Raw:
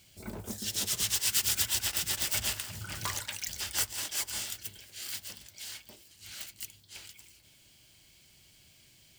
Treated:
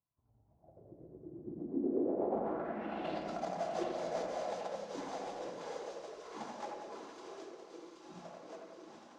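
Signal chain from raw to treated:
samples in bit-reversed order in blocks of 256 samples
dynamic equaliser 780 Hz, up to +5 dB, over −54 dBFS, Q 1.7
envelope filter 350–1,100 Hz, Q 6, down, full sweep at −26 dBFS
flanger 1.2 Hz, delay 9.4 ms, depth 8.7 ms, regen −61%
delay with pitch and tempo change per echo 177 ms, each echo −4 semitones, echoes 3, each echo −6 dB
low-pass filter sweep 140 Hz → 6,200 Hz, 0:01.40–0:03.37
echo with a time of its own for lows and highs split 2,600 Hz, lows 86 ms, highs 775 ms, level −4 dB
rectangular room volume 1,800 cubic metres, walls mixed, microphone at 0.73 metres
level +16 dB

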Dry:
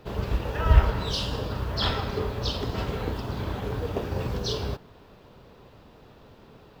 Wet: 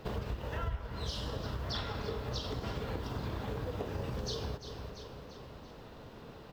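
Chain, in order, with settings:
wrong playback speed 24 fps film run at 25 fps
repeating echo 342 ms, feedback 50%, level −16.5 dB
downward compressor 8 to 1, threshold −35 dBFS, peak gain reduction 24 dB
level +1 dB

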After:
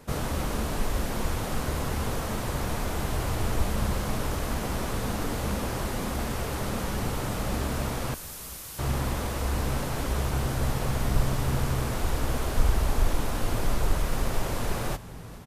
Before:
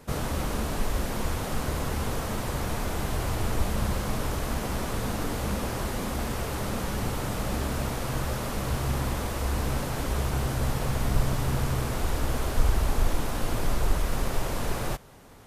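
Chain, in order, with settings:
0:08.14–0:08.79: first difference
on a send: echo with shifted repeats 424 ms, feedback 56%, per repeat −63 Hz, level −17.5 dB

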